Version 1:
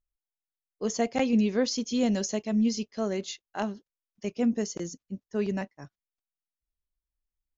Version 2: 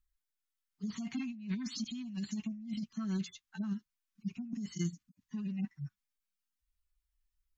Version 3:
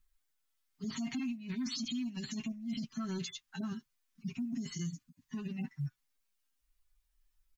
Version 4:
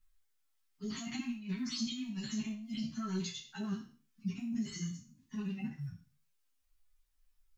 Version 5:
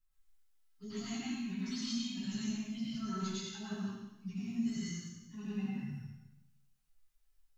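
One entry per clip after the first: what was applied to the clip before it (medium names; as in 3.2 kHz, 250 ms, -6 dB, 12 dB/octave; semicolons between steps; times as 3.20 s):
harmonic-percussive separation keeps harmonic; Chebyshev band-stop 220–1200 Hz, order 2; compressor with a negative ratio -38 dBFS, ratio -1
comb 7.5 ms, depth 73%; peak limiter -35 dBFS, peak gain reduction 9.5 dB; short-mantissa float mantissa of 6-bit; trim +4.5 dB
spectral sustain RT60 0.42 s; three-phase chorus; trim +1.5 dB
plate-style reverb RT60 1 s, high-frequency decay 0.95×, pre-delay 80 ms, DRR -6 dB; trim -7 dB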